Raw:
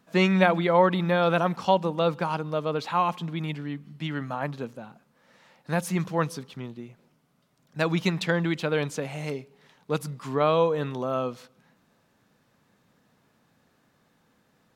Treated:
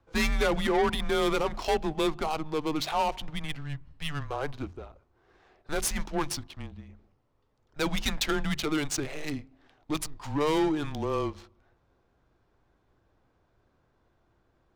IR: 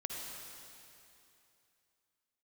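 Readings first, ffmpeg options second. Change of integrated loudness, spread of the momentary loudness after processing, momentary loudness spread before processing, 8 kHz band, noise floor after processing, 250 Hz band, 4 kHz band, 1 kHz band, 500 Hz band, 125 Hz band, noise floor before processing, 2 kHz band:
-4.0 dB, 14 LU, 16 LU, +8.0 dB, -71 dBFS, -3.0 dB, +2.0 dB, -5.0 dB, -5.0 dB, -7.5 dB, -67 dBFS, -3.5 dB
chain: -af "bass=f=250:g=-2,treble=f=4k:g=15,bandreject=f=60:t=h:w=6,bandreject=f=120:t=h:w=6,bandreject=f=180:t=h:w=6,bandreject=f=240:t=h:w=6,bandreject=f=300:t=h:w=6,bandreject=f=360:t=h:w=6,adynamicsmooth=sensitivity=7.5:basefreq=1.5k,asoftclip=type=tanh:threshold=-19.5dB,afreqshift=-150"

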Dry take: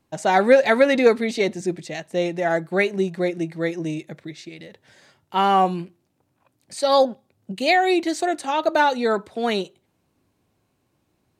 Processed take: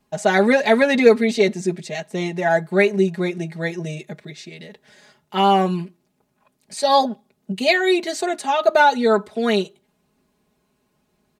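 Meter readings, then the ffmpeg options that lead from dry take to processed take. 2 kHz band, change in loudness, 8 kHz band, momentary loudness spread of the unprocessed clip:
+3.0 dB, +2.0 dB, +3.0 dB, 19 LU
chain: -af "aecho=1:1:4.8:0.96"

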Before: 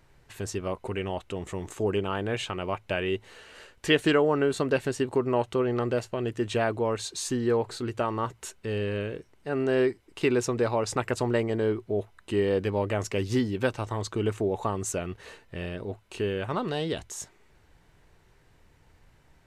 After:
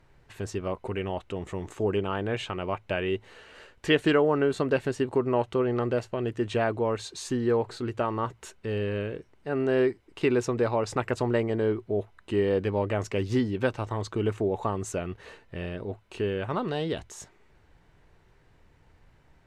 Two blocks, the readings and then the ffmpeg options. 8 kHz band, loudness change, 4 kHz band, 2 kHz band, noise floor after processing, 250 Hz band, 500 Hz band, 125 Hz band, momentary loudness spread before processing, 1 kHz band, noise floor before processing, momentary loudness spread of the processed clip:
-6.0 dB, 0.0 dB, -2.5 dB, -1.0 dB, -61 dBFS, +0.5 dB, +0.5 dB, +0.5 dB, 11 LU, 0.0 dB, -61 dBFS, 10 LU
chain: -af "aemphasis=mode=reproduction:type=cd"

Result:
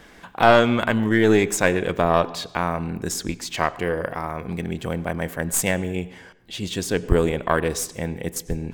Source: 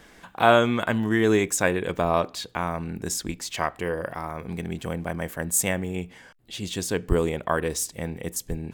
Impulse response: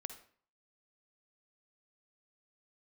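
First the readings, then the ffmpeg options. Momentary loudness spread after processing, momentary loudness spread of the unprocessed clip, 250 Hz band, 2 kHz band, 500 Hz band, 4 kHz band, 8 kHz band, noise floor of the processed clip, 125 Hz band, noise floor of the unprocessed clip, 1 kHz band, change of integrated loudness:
12 LU, 12 LU, +3.5 dB, +3.5 dB, +3.5 dB, +3.0 dB, 0.0 dB, -48 dBFS, +3.5 dB, -52 dBFS, +3.5 dB, +3.0 dB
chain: -filter_complex "[0:a]aeval=exprs='(tanh(3.16*val(0)+0.5)-tanh(0.5))/3.16':c=same,asplit=2[a][b];[1:a]atrim=start_sample=2205,asetrate=24255,aresample=44100,lowpass=6.4k[c];[b][c]afir=irnorm=-1:irlink=0,volume=-8dB[d];[a][d]amix=inputs=2:normalize=0,volume=3dB"

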